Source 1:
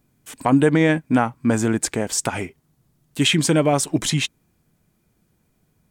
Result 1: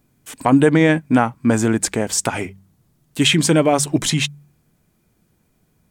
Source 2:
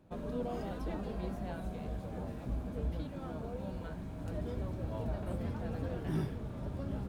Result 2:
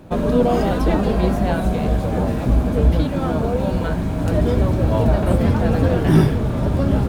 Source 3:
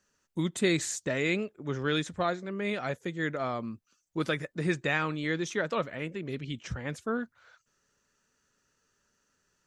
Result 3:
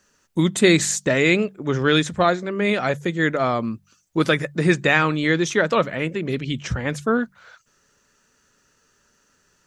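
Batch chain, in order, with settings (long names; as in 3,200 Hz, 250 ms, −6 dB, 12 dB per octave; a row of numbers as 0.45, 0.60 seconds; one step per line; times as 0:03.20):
hum removal 48.28 Hz, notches 4
normalise the peak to −2 dBFS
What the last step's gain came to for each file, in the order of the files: +3.0, +21.5, +11.5 decibels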